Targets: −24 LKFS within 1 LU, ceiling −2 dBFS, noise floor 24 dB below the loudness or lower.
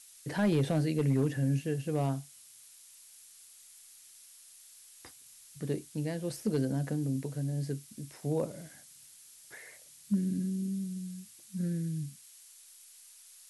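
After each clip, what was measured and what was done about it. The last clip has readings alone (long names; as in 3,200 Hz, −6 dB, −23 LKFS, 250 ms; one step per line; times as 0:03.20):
share of clipped samples 0.2%; peaks flattened at −21.0 dBFS; background noise floor −56 dBFS; target noise floor −57 dBFS; integrated loudness −33.0 LKFS; sample peak −21.0 dBFS; target loudness −24.0 LKFS
→ clipped peaks rebuilt −21 dBFS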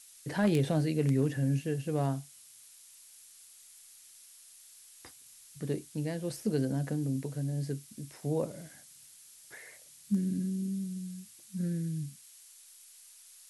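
share of clipped samples 0.0%; background noise floor −56 dBFS; target noise floor −57 dBFS
→ noise reduction from a noise print 6 dB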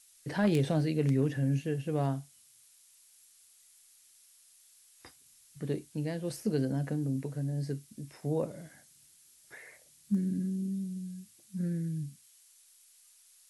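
background noise floor −62 dBFS; integrated loudness −33.0 LKFS; sample peak −12.5 dBFS; target loudness −24.0 LKFS
→ level +9 dB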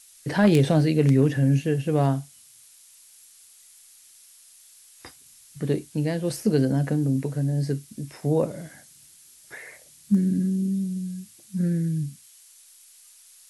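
integrated loudness −24.0 LKFS; sample peak −3.5 dBFS; background noise floor −53 dBFS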